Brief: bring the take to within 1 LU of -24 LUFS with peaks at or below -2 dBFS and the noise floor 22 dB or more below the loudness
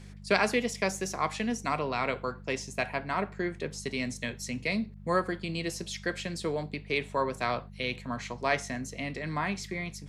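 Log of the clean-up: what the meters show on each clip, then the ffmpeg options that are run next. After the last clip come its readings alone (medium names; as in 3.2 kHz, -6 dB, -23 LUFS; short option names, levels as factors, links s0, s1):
hum 50 Hz; highest harmonic 200 Hz; hum level -44 dBFS; loudness -32.0 LUFS; peak level -7.5 dBFS; loudness target -24.0 LUFS
-> -af "bandreject=f=50:t=h:w=4,bandreject=f=100:t=h:w=4,bandreject=f=150:t=h:w=4,bandreject=f=200:t=h:w=4"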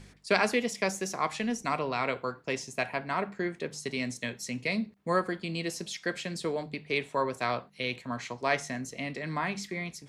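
hum not found; loudness -32.0 LUFS; peak level -7.5 dBFS; loudness target -24.0 LUFS
-> -af "volume=2.51,alimiter=limit=0.794:level=0:latency=1"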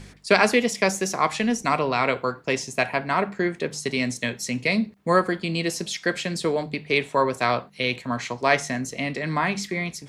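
loudness -24.0 LUFS; peak level -2.0 dBFS; noise floor -48 dBFS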